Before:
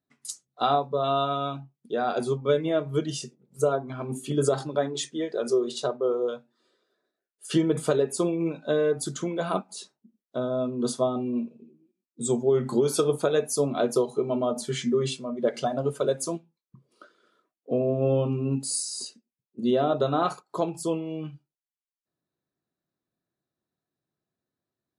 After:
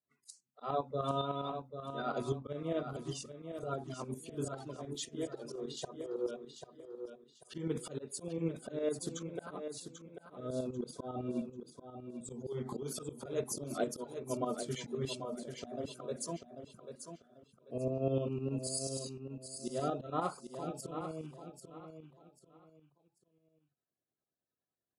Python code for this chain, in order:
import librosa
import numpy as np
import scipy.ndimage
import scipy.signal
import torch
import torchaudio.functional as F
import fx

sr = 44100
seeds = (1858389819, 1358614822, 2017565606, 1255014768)

p1 = fx.spec_quant(x, sr, step_db=30)
p2 = scipy.signal.sosfilt(scipy.signal.butter(2, 48.0, 'highpass', fs=sr, output='sos'), p1)
p3 = fx.auto_swell(p2, sr, attack_ms=160.0)
p4 = fx.tremolo_shape(p3, sr, shape='saw_up', hz=9.9, depth_pct=65)
p5 = p4 + fx.echo_feedback(p4, sr, ms=791, feedback_pct=28, wet_db=-8.5, dry=0)
y = F.gain(torch.from_numpy(p5), -6.0).numpy()